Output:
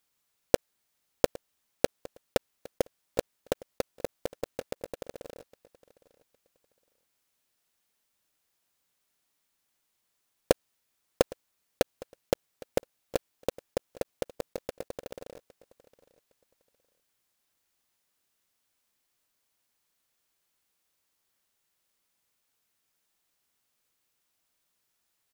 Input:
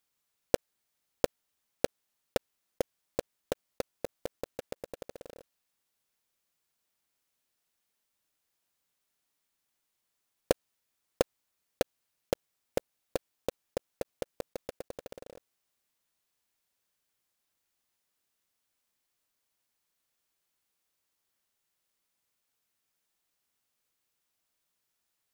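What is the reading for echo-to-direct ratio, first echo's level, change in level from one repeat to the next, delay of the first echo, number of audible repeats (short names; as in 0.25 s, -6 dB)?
-21.0 dB, -21.0 dB, -13.0 dB, 0.811 s, 2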